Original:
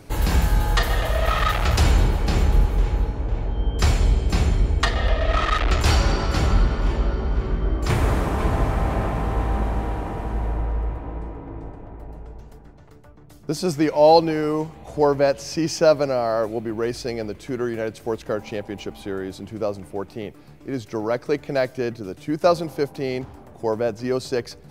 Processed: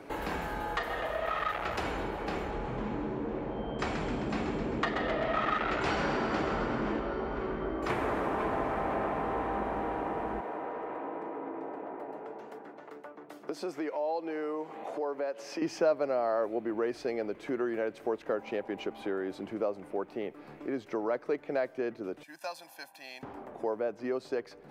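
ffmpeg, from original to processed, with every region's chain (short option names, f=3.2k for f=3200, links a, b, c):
-filter_complex "[0:a]asettb=1/sr,asplit=3[a][b][c];[a]atrim=end=2.514[d];[b]atrim=start=2.51:end=7,asetpts=PTS-STARTPTS,afade=t=in:d=0.004:c=qsin,afade=t=out:st=4.486:d=0.004:c=qsin,lowpass=f=8.5k:w=0.5412,lowpass=f=8.5k:w=1.3066,asplit=9[e][f][g][h][i][j][k][l][m];[f]adelay=131,afreqshift=84,volume=-8dB[n];[g]adelay=262,afreqshift=168,volume=-12.2dB[o];[h]adelay=393,afreqshift=252,volume=-16.3dB[p];[i]adelay=524,afreqshift=336,volume=-20.5dB[q];[j]adelay=655,afreqshift=420,volume=-24.6dB[r];[k]adelay=786,afreqshift=504,volume=-28.8dB[s];[l]adelay=917,afreqshift=588,volume=-32.9dB[t];[m]adelay=1048,afreqshift=672,volume=-37.1dB[u];[e][n][o][p][q][r][s][t][u]amix=inputs=9:normalize=0,atrim=end_sample=198009[v];[c]atrim=start=6.996[w];[d][v]acrossfade=d=0.004:c1=hsin:c2=qsin[x];[x][w]acrossfade=d=0.004:c1=qsin:c2=hsin,asettb=1/sr,asplit=3[y][z][aa];[y]atrim=end=10.404[ab];[z]atrim=start=10.4:end=15.62,asetpts=PTS-STARTPTS,afade=t=in:d=0.004:c=qsin,afade=t=out:st=5.216:d=0.004:c=qsin,highpass=270,acompressor=threshold=-37dB:ratio=2:attack=3.2:release=140:knee=1:detection=peak[ac];[aa]atrim=start=15.616[ad];[ab][ac]acrossfade=d=0.004:c1=hsin:c2=qsin[ae];[ae][ad]acrossfade=d=0.004:c1=qsin:c2=hsin,asettb=1/sr,asplit=3[af][ag][ah];[af]atrim=end=22.234[ai];[ag]atrim=start=22.23:end=23.23,asetpts=PTS-STARTPTS,afade=t=in:d=0.004:c=qsin,afade=t=out:st=0.996:d=0.004:c=qsin,aderivative,aecho=1:1:1.2:0.89,atrim=end_sample=44100,acrusher=bits=8:mode=log:mix=0:aa=0.000001[aj];[ah]atrim=start=23.226[ak];[ai][aj]acrossfade=d=0.004:c1=hsin:c2=qsin[al];[al][ak]acrossfade=d=0.004:c1=qsin:c2=hsin,dynaudnorm=f=420:g=21:m=11.5dB,acrossover=split=230 2700:gain=0.0891 1 0.178[am][an][ao];[am][an][ao]amix=inputs=3:normalize=0,acompressor=threshold=-40dB:ratio=2,volume=2dB"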